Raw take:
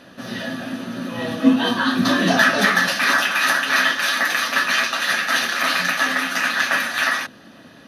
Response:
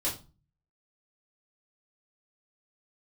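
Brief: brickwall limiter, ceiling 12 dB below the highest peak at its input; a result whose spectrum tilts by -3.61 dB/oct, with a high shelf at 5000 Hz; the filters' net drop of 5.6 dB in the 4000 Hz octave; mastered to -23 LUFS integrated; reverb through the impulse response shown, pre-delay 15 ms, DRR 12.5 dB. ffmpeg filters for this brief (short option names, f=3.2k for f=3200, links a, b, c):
-filter_complex "[0:a]equalizer=f=4k:t=o:g=-3.5,highshelf=f=5k:g=-8.5,alimiter=limit=-15dB:level=0:latency=1,asplit=2[a][b];[1:a]atrim=start_sample=2205,adelay=15[c];[b][c]afir=irnorm=-1:irlink=0,volume=-18dB[d];[a][d]amix=inputs=2:normalize=0,volume=0.5dB"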